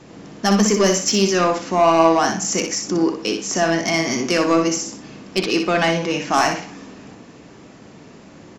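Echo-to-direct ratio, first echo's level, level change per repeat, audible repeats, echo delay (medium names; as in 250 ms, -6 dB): -6.5 dB, -6.5 dB, -12.5 dB, 2, 61 ms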